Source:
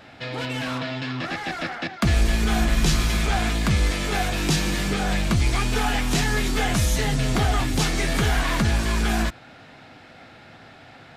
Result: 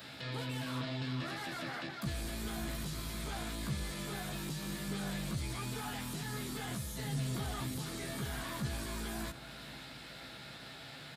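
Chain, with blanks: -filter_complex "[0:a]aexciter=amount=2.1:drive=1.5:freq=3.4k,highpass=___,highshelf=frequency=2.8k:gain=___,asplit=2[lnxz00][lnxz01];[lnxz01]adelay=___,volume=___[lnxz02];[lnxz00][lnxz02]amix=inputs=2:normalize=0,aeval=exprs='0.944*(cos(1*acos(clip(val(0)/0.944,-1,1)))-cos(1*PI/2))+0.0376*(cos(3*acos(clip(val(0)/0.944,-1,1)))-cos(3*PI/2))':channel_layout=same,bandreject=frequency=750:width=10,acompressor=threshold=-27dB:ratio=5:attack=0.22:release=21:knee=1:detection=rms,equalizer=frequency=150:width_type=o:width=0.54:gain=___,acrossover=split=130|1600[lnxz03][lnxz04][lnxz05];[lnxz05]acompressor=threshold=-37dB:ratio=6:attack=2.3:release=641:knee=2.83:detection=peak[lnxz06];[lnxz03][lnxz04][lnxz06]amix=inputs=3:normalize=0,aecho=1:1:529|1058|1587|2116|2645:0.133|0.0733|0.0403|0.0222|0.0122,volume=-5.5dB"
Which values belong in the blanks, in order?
76, 9, 15, -6.5dB, 5.5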